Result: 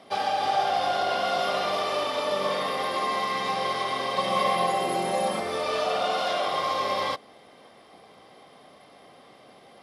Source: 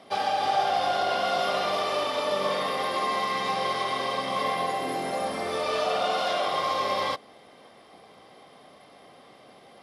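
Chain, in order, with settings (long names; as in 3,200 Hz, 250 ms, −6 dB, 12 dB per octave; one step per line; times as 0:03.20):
0:04.16–0:05.40: comb filter 5.4 ms, depth 100%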